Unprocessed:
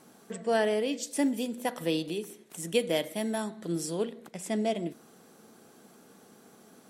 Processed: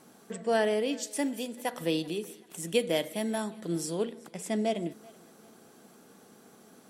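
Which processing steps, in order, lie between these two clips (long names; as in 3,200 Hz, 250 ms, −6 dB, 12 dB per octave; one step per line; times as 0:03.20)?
0:01.07–0:01.74: low-shelf EQ 220 Hz −11 dB
on a send: feedback echo with a high-pass in the loop 384 ms, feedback 40%, level −23 dB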